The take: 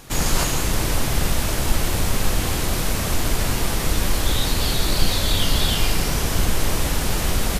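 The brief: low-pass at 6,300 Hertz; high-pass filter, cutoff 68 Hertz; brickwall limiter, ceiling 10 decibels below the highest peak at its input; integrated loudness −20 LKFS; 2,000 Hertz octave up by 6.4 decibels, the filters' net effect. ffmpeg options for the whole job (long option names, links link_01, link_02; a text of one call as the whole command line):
ffmpeg -i in.wav -af "highpass=68,lowpass=6300,equalizer=frequency=2000:width_type=o:gain=8,volume=6dB,alimiter=limit=-12dB:level=0:latency=1" out.wav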